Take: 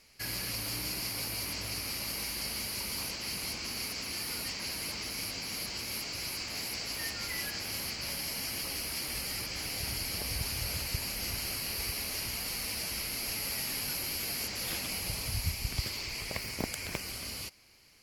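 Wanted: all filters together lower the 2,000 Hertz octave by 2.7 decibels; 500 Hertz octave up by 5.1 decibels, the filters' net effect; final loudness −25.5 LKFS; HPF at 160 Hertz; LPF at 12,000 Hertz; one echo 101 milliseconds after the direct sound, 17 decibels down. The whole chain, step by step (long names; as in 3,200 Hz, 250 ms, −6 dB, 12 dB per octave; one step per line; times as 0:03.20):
high-pass filter 160 Hz
low-pass filter 12,000 Hz
parametric band 500 Hz +6.5 dB
parametric band 2,000 Hz −3.5 dB
single-tap delay 101 ms −17 dB
level +9.5 dB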